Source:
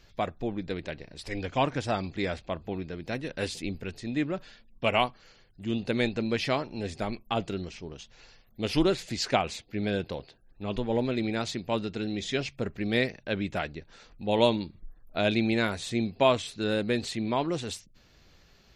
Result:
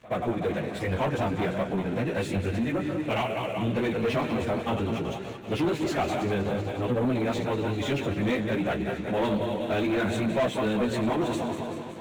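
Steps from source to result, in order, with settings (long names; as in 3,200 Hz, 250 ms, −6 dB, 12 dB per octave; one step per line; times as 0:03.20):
feedback delay that plays each chunk backwards 148 ms, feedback 78%, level −11.5 dB
high-pass filter 75 Hz 24 dB per octave
in parallel at +3 dB: downward compressor 12 to 1, threshold −34 dBFS, peak gain reduction 18.5 dB
on the sum: chorus effect 0.36 Hz, delay 15.5 ms, depth 6.1 ms
soft clipping −18 dBFS, distortion −17 dB
high-shelf EQ 3,000 Hz −9 dB
time stretch by phase vocoder 0.64×
leveller curve on the samples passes 3
parametric band 4,900 Hz −11.5 dB 0.44 octaves
on a send: backwards echo 75 ms −19.5 dB
on the sum: level −1.5 dB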